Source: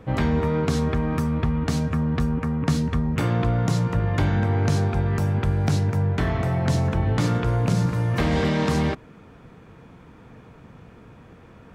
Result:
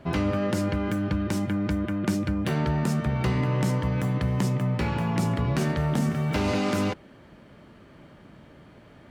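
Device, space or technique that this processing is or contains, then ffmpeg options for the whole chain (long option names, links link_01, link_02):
nightcore: -af "asetrate=56889,aresample=44100,volume=-3.5dB"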